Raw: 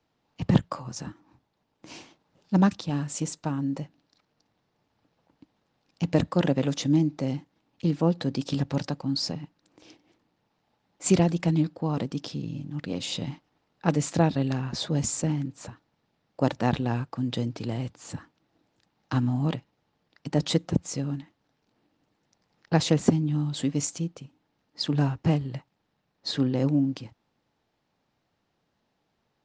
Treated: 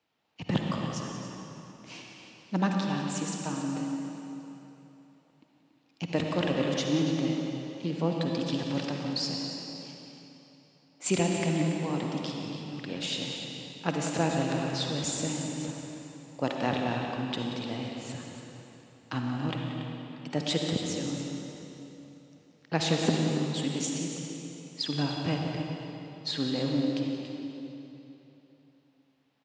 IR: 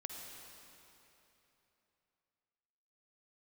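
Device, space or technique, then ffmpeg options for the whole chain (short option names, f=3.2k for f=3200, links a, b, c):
stadium PA: -filter_complex "[0:a]highpass=f=220:p=1,equalizer=f=2.7k:t=o:w=1.1:g=6,aecho=1:1:180.8|282.8:0.251|0.282[a];[1:a]atrim=start_sample=2205[b];[a][b]afir=irnorm=-1:irlink=0"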